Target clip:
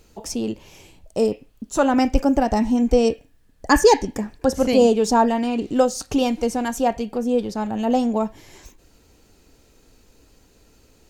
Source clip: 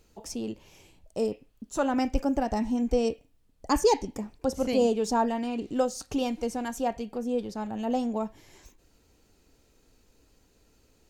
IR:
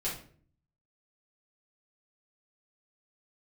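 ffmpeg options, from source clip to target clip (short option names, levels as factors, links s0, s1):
-filter_complex "[0:a]asettb=1/sr,asplit=3[s0][s1][s2];[s0]atrim=end=3.094[s3];[s1]atrim=start=3.09:end=4.64,asetpts=PTS-STARTPTS,afade=t=in:d=0.004:c=qsin,afade=t=out:st=1.546:d=0.004:c=qsin,equalizer=f=1700:t=o:w=0.21:g=12.5[s4];[s2]atrim=start=4.636[s5];[s3][s4]acrossfade=d=0.004:c1=hsin:c2=qsin[s6];[s6][s5]acrossfade=d=0.004:c1=qsin:c2=hsin,volume=2.66"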